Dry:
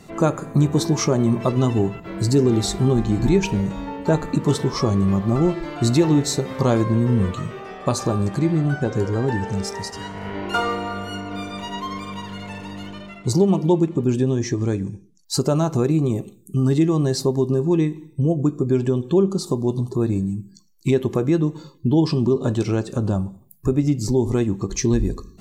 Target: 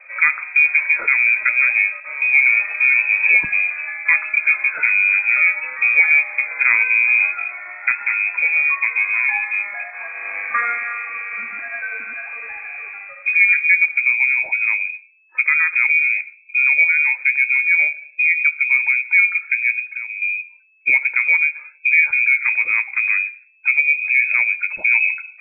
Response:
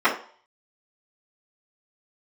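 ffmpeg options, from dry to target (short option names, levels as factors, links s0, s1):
-filter_complex "[0:a]asettb=1/sr,asplit=3[s0][s1][s2];[s0]atrim=end=7.924[s3];[s1]atrim=start=7.92:end=8.55,asetpts=PTS-STARTPTS,afade=t=in:d=0.004:c=qsin,afade=t=out:st=0.626:d=0.004:c=qsin,aeval=exprs='if(lt(val(0),0),0.708*val(0),val(0))':c=same[s4];[s2]atrim=start=8.546[s5];[s3][s4]acrossfade=d=0.004:c1=hsin:c2=qsin[s6];[s6][s5]acrossfade=d=0.004:c1=qsin:c2=hsin,lowpass=f=2200:t=q:w=0.5098,lowpass=f=2200:t=q:w=0.6013,lowpass=f=2200:t=q:w=0.9,lowpass=f=2200:t=q:w=2.563,afreqshift=-2600,acrossover=split=390|510|1600[s7][s8][s9][s10];[s7]aeval=exprs='sgn(val(0))*max(abs(val(0))-0.00158,0)':c=same[s11];[s11][s8][s9][s10]amix=inputs=4:normalize=0,asettb=1/sr,asplit=3[s12][s13][s14];[s12]atrim=end=4.214[s15];[s13]atrim=start=4.21:end=5.17,asetpts=PTS-STARTPTS,afade=t=in:d=0.004:c=qsin,afade=t=out:st=0.956:d=0.004:c=qsin,bandreject=f=830:w=12[s16];[s14]atrim=start=5.166[s17];[s15][s16]acrossfade=d=0.004:c1=hsin:c2=qsin[s18];[s18][s17]acrossfade=d=0.004:c1=qsin:c2=hsin,asettb=1/sr,asplit=3[s19][s20][s21];[s19]atrim=end=19.794[s22];[s20]atrim=start=19.79:end=20.22,asetpts=PTS-STARTPTS,afade=t=in:d=0.004:c=qsin,afade=t=out:st=0.426:d=0.004:c=qsin,acompressor=threshold=0.0398:ratio=6[s23];[s21]atrim=start=20.216[s24];[s22][s23]acrossfade=d=0.004:c1=hsin:c2=qsin[s25];[s25][s24]acrossfade=d=0.004:c1=qsin:c2=hsin,volume=1.33"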